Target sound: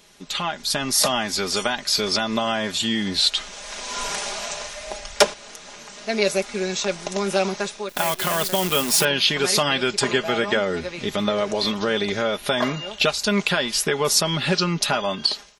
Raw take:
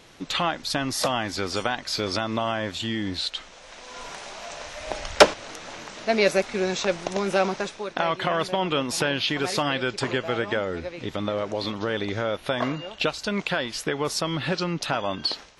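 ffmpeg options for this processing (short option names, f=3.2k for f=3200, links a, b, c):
-filter_complex "[0:a]aecho=1:1:4.9:0.59,dynaudnorm=f=280:g=5:m=14dB,asettb=1/sr,asplit=3[a][b][c];[a]atrim=end=7.894[d];[b]atrim=start=7.89:end=9.05,asetpts=PTS-STARTPTS,afade=t=in:d=0.004:c=qsin,afade=t=out:st=1.156:d=0.004:c=qsin,acrusher=bits=5:dc=4:mix=0:aa=0.000001[e];[c]atrim=start=9.046[f];[d][e]acrossfade=d=0.004:c1=hsin:c2=qsin[g];[g][f]acrossfade=d=0.004:c1=qsin:c2=hsin,crystalizer=i=2:c=0,volume=-6dB"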